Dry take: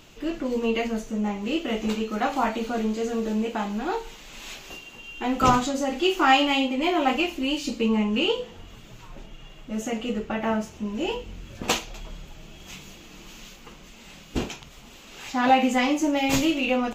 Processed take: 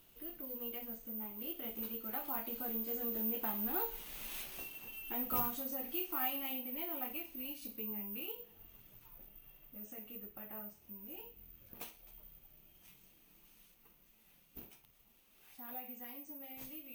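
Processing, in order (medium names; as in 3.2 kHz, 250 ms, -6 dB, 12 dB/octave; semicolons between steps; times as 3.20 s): Doppler pass-by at 4.03 s, 12 m/s, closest 8.1 m; compression 1.5:1, threshold -56 dBFS, peak gain reduction 12.5 dB; careless resampling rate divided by 3×, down filtered, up zero stuff; trim -2 dB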